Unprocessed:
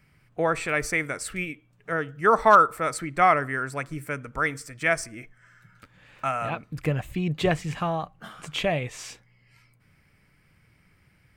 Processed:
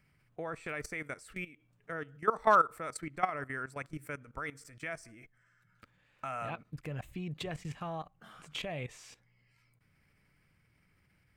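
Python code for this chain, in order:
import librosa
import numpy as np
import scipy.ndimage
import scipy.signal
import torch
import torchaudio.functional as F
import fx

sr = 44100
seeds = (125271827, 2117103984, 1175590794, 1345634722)

y = fx.level_steps(x, sr, step_db=16)
y = y * librosa.db_to_amplitude(-6.0)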